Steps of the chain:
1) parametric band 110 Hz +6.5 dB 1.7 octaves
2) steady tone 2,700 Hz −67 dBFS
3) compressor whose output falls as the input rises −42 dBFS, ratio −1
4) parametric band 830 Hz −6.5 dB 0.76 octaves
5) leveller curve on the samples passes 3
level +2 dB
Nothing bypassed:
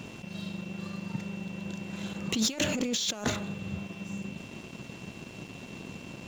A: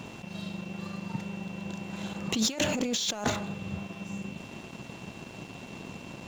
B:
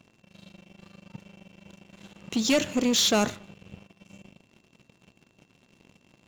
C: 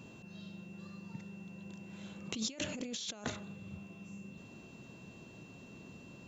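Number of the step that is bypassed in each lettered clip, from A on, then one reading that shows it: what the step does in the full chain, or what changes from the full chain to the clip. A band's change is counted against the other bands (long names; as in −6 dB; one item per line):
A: 4, 1 kHz band +4.0 dB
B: 3, change in momentary loudness spread −5 LU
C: 5, change in crest factor +10.5 dB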